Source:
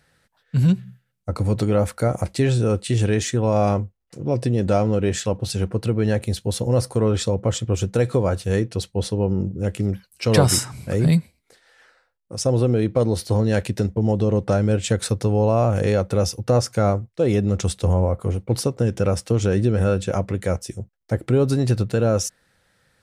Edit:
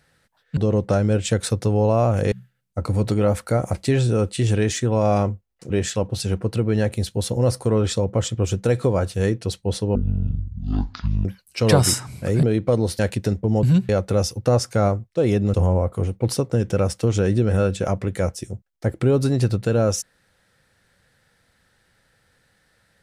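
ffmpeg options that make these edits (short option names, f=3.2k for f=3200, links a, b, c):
-filter_complex "[0:a]asplit=11[a][b][c][d][e][f][g][h][i][j][k];[a]atrim=end=0.572[l];[b]atrim=start=14.158:end=15.912[m];[c]atrim=start=0.828:end=4.212[n];[d]atrim=start=4.998:end=9.254[o];[e]atrim=start=9.25:end=9.9,asetpts=PTS-STARTPTS,asetrate=22050,aresample=44100[p];[f]atrim=start=9.896:end=11.082[q];[g]atrim=start=12.708:end=13.272[r];[h]atrim=start=13.518:end=14.162[s];[i]atrim=start=0.568:end=0.832[t];[j]atrim=start=15.908:end=17.562[u];[k]atrim=start=17.808[v];[l][m]acrossfade=d=0.004:c1=hsin:c2=hsin[w];[w][n]acrossfade=d=0.004:c1=hsin:c2=hsin[x];[x][o]acrossfade=d=0.004:c1=hsin:c2=hsin[y];[y][p]acrossfade=d=0.004:c1=hsin:c2=hsin[z];[z][q]acrossfade=d=0.004:c1=hsin:c2=hsin[aa];[aa][r]acrossfade=d=0.004:c1=hsin:c2=hsin[ab];[ab][s]acrossfade=d=0.004:c1=hsin:c2=hsin[ac];[ac][t]acrossfade=d=0.004:c1=hsin:c2=hsin[ad];[ad][u]acrossfade=d=0.004:c1=hsin:c2=hsin[ae];[ae][v]acrossfade=d=0.004:c1=hsin:c2=hsin"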